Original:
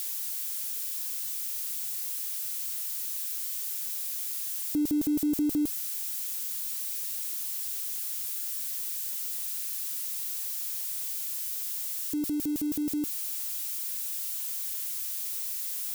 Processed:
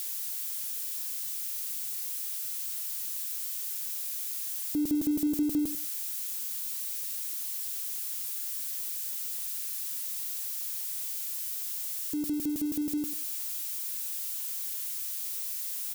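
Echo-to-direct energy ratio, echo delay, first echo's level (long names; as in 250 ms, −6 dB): −12.5 dB, 96 ms, −12.5 dB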